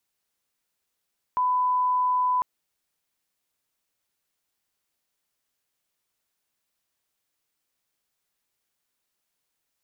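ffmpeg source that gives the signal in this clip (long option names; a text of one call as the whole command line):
ffmpeg -f lavfi -i "sine=frequency=1000:duration=1.05:sample_rate=44100,volume=-1.94dB" out.wav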